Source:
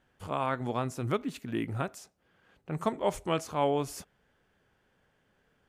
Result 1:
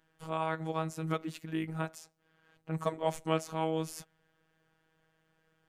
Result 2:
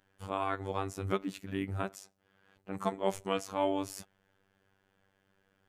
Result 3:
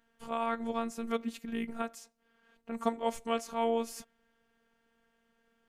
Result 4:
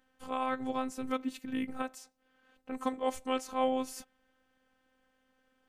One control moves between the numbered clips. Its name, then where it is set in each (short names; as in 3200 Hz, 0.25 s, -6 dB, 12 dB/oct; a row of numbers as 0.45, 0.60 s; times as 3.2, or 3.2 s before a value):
robotiser, frequency: 160, 97, 230, 260 Hz